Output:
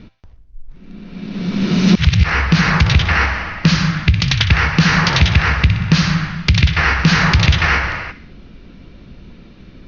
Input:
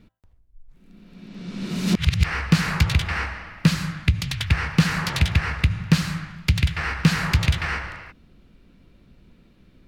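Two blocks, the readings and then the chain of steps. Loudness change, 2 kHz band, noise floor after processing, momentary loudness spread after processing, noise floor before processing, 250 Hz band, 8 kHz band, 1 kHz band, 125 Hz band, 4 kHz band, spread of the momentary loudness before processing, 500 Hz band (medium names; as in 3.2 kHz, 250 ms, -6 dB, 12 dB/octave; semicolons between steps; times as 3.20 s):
+8.5 dB, +10.5 dB, -41 dBFS, 7 LU, -55 dBFS, +8.0 dB, +5.5 dB, +11.0 dB, +7.5 dB, +10.0 dB, 10 LU, +9.5 dB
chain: steep low-pass 6.3 kHz 96 dB/octave; in parallel at -3 dB: compression, threshold -29 dBFS, peak gain reduction 17 dB; on the sum: feedback echo behind a high-pass 61 ms, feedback 51%, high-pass 1.8 kHz, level -12 dB; loudness maximiser +10.5 dB; trim -1 dB; Opus 48 kbps 48 kHz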